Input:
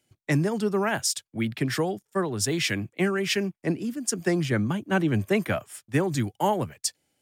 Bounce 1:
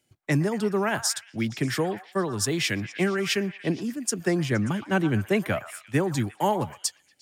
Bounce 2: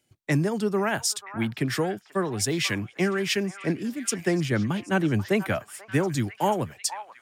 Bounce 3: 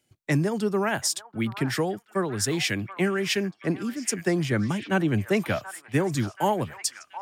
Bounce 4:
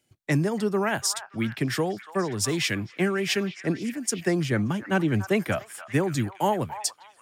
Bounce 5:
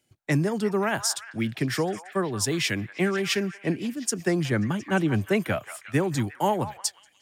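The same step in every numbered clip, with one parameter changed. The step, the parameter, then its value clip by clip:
repeats whose band climbs or falls, time: 117 ms, 488 ms, 731 ms, 288 ms, 178 ms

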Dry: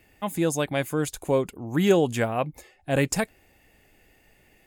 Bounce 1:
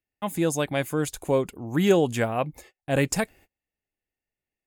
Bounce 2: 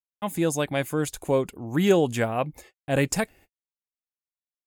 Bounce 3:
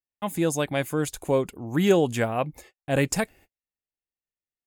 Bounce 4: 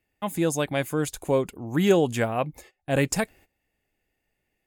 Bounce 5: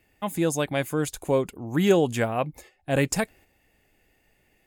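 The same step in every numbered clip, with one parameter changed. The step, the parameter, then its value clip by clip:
gate, range: -32 dB, -57 dB, -44 dB, -18 dB, -6 dB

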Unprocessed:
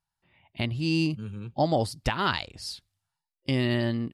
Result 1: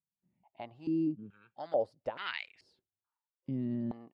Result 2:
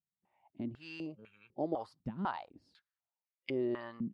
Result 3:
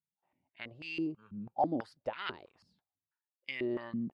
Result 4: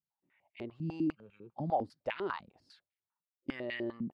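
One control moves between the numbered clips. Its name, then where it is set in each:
step-sequenced band-pass, rate: 2.3 Hz, 4 Hz, 6.1 Hz, 10 Hz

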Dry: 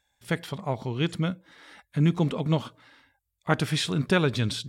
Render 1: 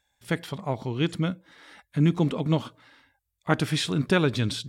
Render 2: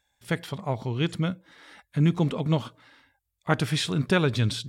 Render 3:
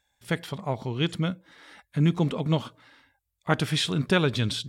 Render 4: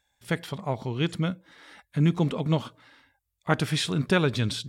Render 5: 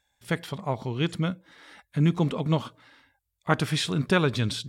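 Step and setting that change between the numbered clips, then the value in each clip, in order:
dynamic bell, frequency: 300 Hz, 110 Hz, 3.2 kHz, 9.7 kHz, 1.1 kHz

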